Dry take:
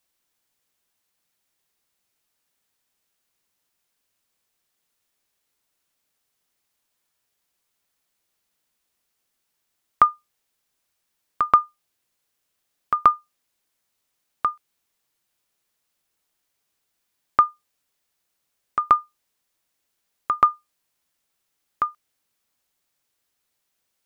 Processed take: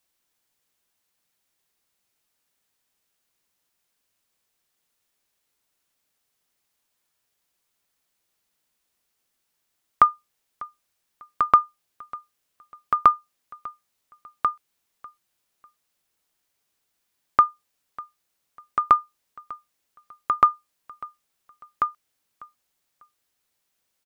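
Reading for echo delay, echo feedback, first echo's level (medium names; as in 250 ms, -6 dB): 597 ms, 28%, -21.0 dB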